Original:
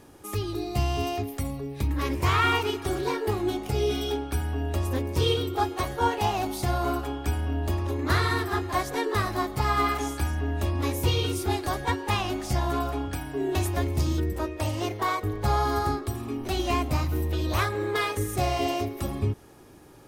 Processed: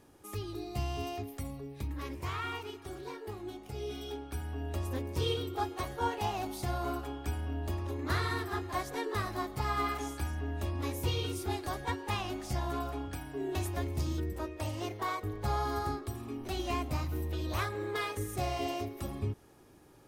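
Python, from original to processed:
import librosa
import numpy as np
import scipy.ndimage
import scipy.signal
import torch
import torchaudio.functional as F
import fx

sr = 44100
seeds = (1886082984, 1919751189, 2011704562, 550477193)

y = fx.gain(x, sr, db=fx.line((1.64, -9.0), (2.44, -15.0), (3.61, -15.0), (4.74, -8.0)))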